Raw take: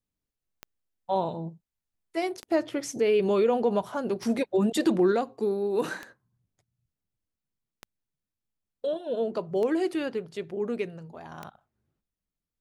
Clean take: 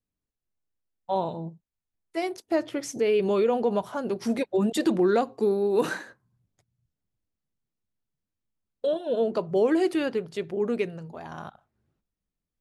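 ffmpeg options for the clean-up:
ffmpeg -i in.wav -af "adeclick=threshold=4,asetnsamples=nb_out_samples=441:pad=0,asendcmd='5.12 volume volume 3.5dB',volume=0dB" out.wav

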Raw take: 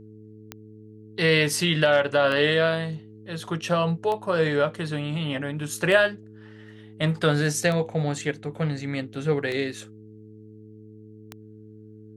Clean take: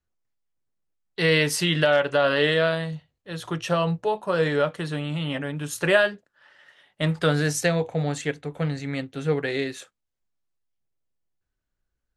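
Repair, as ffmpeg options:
ffmpeg -i in.wav -af "adeclick=threshold=4,bandreject=frequency=107.6:width_type=h:width=4,bandreject=frequency=215.2:width_type=h:width=4,bandreject=frequency=322.8:width_type=h:width=4,bandreject=frequency=430.4:width_type=h:width=4" out.wav

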